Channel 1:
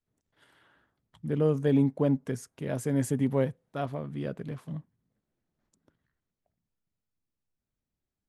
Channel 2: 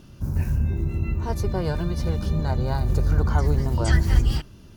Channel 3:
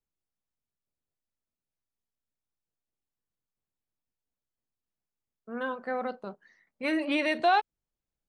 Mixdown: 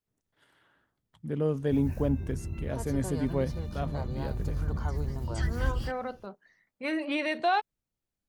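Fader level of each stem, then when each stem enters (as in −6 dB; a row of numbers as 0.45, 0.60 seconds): −3.0, −11.0, −2.5 decibels; 0.00, 1.50, 0.00 seconds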